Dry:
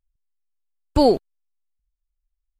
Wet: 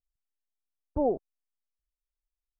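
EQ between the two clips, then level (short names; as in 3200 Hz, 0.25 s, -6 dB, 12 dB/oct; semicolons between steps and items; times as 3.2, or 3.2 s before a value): ladder low-pass 930 Hz, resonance 30%; -6.0 dB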